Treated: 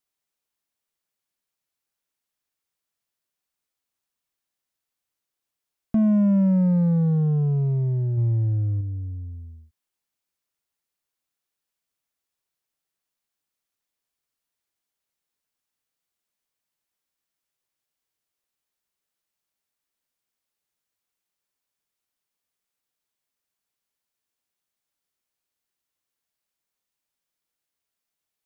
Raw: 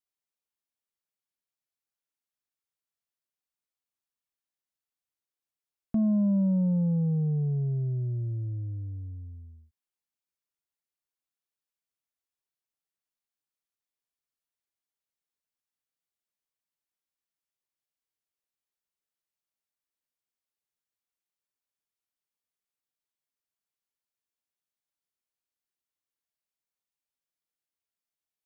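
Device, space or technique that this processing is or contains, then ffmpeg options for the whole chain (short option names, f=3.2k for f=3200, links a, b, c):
parallel distortion: -filter_complex "[0:a]asettb=1/sr,asplit=3[a][b][c];[a]atrim=end=8.174[d];[b]atrim=start=8.17:end=8.81,asetpts=PTS-STARTPTS,afade=t=in:d=0.004:c=qsin,afade=t=out:st=0.636:d=0.004:c=qsin,equalizer=f=110:w=1.3:g=4.5[e];[c]atrim=start=8.806[f];[d][e]acrossfade=d=0.004:c1=hsin:c2=qsin[g];[g][f]acrossfade=d=0.004:c1=qsin:c2=hsin,asplit=2[h][i];[i]asoftclip=type=hard:threshold=-33.5dB,volume=-11dB[j];[h][j]amix=inputs=2:normalize=0,volume=5dB"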